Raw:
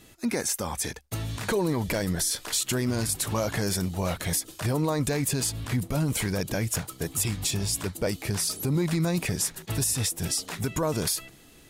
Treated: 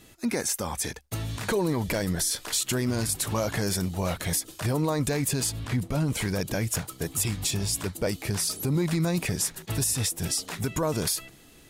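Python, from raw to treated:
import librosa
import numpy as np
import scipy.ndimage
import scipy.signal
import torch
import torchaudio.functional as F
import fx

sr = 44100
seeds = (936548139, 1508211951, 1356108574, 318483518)

y = fx.high_shelf(x, sr, hz=9200.0, db=-9.0, at=(5.59, 6.21))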